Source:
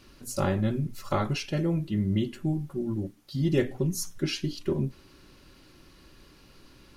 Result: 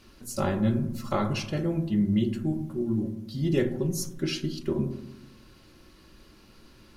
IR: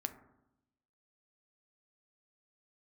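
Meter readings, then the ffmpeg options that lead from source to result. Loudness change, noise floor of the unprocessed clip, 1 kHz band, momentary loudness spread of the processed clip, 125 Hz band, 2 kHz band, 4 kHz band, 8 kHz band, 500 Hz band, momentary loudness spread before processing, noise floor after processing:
+1.0 dB, −56 dBFS, 0.0 dB, 6 LU, −0.5 dB, −0.5 dB, −0.5 dB, −0.5 dB, +0.5 dB, 6 LU, −55 dBFS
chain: -filter_complex "[1:a]atrim=start_sample=2205,asetrate=37485,aresample=44100[link_01];[0:a][link_01]afir=irnorm=-1:irlink=0"

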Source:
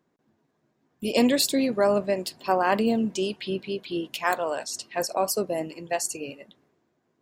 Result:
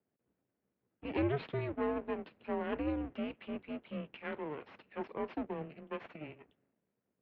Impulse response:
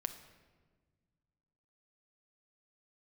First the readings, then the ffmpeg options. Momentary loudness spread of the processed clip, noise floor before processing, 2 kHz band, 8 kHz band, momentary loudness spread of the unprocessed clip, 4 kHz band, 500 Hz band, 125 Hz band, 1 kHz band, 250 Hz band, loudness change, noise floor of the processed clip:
13 LU, −73 dBFS, −14.0 dB, below −40 dB, 10 LU, −23.0 dB, −13.5 dB, −4.0 dB, −16.0 dB, −11.5 dB, −13.5 dB, below −85 dBFS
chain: -af "equalizer=frequency=250:width_type=o:width=1:gain=5,equalizer=frequency=500:width_type=o:width=1:gain=4,equalizer=frequency=1000:width_type=o:width=1:gain=-12,aeval=exprs='max(val(0),0)':channel_layout=same,highpass=frequency=330:width_type=q:width=0.5412,highpass=frequency=330:width_type=q:width=1.307,lowpass=frequency=3000:width_type=q:width=0.5176,lowpass=frequency=3000:width_type=q:width=0.7071,lowpass=frequency=3000:width_type=q:width=1.932,afreqshift=-150,volume=-7.5dB"

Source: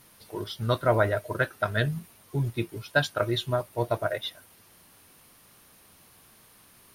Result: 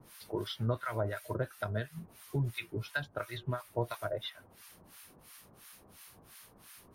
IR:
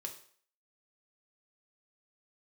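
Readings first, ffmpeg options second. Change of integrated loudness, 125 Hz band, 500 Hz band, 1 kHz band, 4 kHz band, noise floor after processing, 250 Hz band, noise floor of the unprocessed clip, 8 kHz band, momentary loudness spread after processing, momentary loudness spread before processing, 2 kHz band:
−9.0 dB, −6.5 dB, −10.0 dB, −10.0 dB, −9.5 dB, −60 dBFS, −7.5 dB, −57 dBFS, −5.5 dB, 20 LU, 12 LU, −10.5 dB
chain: -filter_complex "[0:a]acrossover=split=100|1100|2700[link_01][link_02][link_03][link_04];[link_01]acompressor=threshold=-45dB:ratio=4[link_05];[link_02]acompressor=threshold=-36dB:ratio=4[link_06];[link_03]acompressor=threshold=-41dB:ratio=4[link_07];[link_04]acompressor=threshold=-52dB:ratio=4[link_08];[link_05][link_06][link_07][link_08]amix=inputs=4:normalize=0,acrossover=split=1000[link_09][link_10];[link_09]aeval=exprs='val(0)*(1-1/2+1/2*cos(2*PI*2.9*n/s))':channel_layout=same[link_11];[link_10]aeval=exprs='val(0)*(1-1/2-1/2*cos(2*PI*2.9*n/s))':channel_layout=same[link_12];[link_11][link_12]amix=inputs=2:normalize=0,volume=4.5dB"

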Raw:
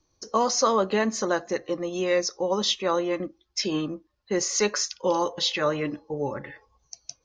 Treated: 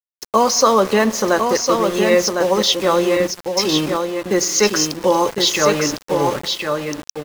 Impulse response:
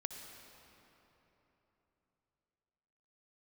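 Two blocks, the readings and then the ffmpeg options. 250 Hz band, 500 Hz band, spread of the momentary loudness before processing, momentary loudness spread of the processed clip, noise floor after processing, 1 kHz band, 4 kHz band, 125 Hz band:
+9.5 dB, +9.5 dB, 10 LU, 7 LU, below −85 dBFS, +9.5 dB, +9.5 dB, +9.5 dB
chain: -filter_complex "[0:a]asplit=2[link_01][link_02];[1:a]atrim=start_sample=2205[link_03];[link_02][link_03]afir=irnorm=-1:irlink=0,volume=-7.5dB[link_04];[link_01][link_04]amix=inputs=2:normalize=0,aeval=exprs='val(0)*gte(abs(val(0)),0.0282)':channel_layout=same,aecho=1:1:1055:0.562,volume=6dB"

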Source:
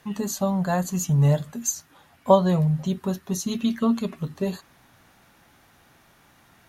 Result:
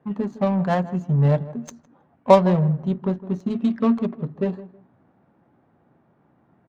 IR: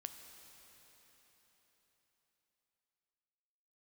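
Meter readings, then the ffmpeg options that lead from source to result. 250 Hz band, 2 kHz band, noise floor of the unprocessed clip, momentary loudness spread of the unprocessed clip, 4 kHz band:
+2.5 dB, +2.0 dB, −58 dBFS, 11 LU, −4.5 dB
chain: -filter_complex "[0:a]highpass=140,adynamicsmooth=sensitivity=1.5:basefreq=640,asplit=2[link_01][link_02];[link_02]adelay=159,lowpass=frequency=1300:poles=1,volume=-15.5dB,asplit=2[link_03][link_04];[link_04]adelay=159,lowpass=frequency=1300:poles=1,volume=0.24[link_05];[link_03][link_05]amix=inputs=2:normalize=0[link_06];[link_01][link_06]amix=inputs=2:normalize=0,volume=3.5dB"

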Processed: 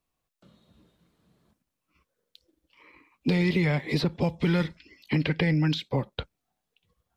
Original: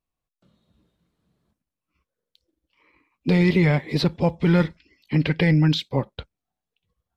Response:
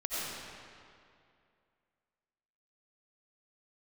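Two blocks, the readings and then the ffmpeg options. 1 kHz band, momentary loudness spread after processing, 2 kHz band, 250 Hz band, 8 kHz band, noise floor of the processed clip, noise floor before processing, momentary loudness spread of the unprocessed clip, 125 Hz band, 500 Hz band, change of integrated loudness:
−5.0 dB, 9 LU, −3.5 dB, −5.5 dB, can't be measured, −84 dBFS, below −85 dBFS, 10 LU, −6.0 dB, −5.5 dB, −5.5 dB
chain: -filter_complex "[0:a]asplit=2[link_01][link_02];[link_02]acompressor=threshold=-29dB:ratio=6,volume=0dB[link_03];[link_01][link_03]amix=inputs=2:normalize=0,lowshelf=frequency=120:gain=-5.5,acrossover=split=220|2300[link_04][link_05][link_06];[link_04]acompressor=threshold=-26dB:ratio=4[link_07];[link_05]acompressor=threshold=-28dB:ratio=4[link_08];[link_06]acompressor=threshold=-35dB:ratio=4[link_09];[link_07][link_08][link_09]amix=inputs=3:normalize=0"

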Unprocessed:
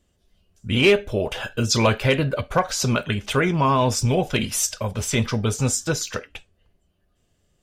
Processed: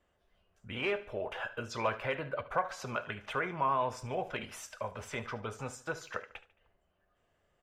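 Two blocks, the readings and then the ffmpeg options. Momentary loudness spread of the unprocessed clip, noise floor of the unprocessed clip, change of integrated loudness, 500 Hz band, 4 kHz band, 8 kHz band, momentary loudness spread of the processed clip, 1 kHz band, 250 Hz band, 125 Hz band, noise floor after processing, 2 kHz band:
8 LU, −68 dBFS, −15.0 dB, −14.0 dB, −19.5 dB, −24.5 dB, 10 LU, −9.0 dB, −20.5 dB, −22.0 dB, −76 dBFS, −11.5 dB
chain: -filter_complex "[0:a]acompressor=threshold=-47dB:ratio=1.5,acrossover=split=540 2200:gain=0.178 1 0.112[link_01][link_02][link_03];[link_01][link_02][link_03]amix=inputs=3:normalize=0,aecho=1:1:73|146|219|292:0.15|0.0658|0.029|0.0127,volume=3dB"

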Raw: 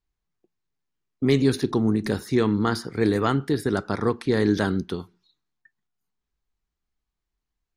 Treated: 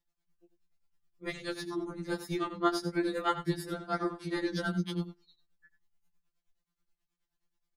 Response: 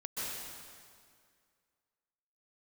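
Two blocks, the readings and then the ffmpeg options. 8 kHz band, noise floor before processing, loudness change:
−7.5 dB, −84 dBFS, −10.5 dB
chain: -filter_complex "[0:a]asplit=2[link_01][link_02];[link_02]acompressor=threshold=-35dB:ratio=6,volume=3dB[link_03];[link_01][link_03]amix=inputs=2:normalize=0,tremolo=f=9.4:d=0.96,aecho=1:1:92:0.224,afftfilt=real='re*2.83*eq(mod(b,8),0)':imag='im*2.83*eq(mod(b,8),0)':win_size=2048:overlap=0.75,volume=-2dB"

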